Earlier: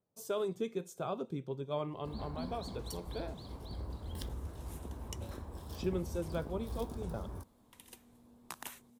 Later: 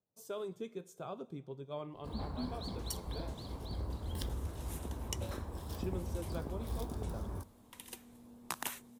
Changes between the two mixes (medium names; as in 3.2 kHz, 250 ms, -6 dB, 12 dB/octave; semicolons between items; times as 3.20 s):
speech -9.0 dB; second sound +5.5 dB; reverb: on, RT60 1.3 s